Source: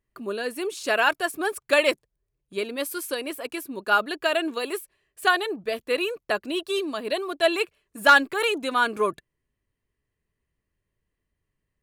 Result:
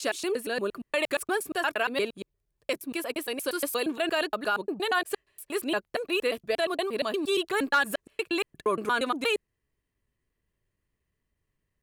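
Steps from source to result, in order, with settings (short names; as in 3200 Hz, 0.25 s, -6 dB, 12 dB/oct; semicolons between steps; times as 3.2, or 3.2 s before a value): slices in reverse order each 0.117 s, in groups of 8; limiter -17 dBFS, peak gain reduction 9 dB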